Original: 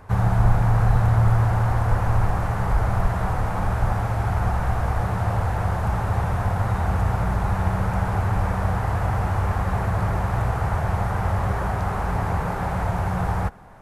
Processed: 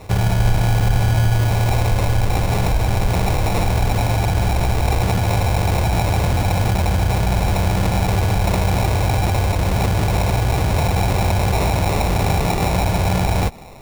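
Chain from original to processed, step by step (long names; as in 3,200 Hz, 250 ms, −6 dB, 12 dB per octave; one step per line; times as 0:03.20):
in parallel at −0.5 dB: compressor whose output falls as the input rises −24 dBFS, ratio −1
on the sum: decimation without filtering 28×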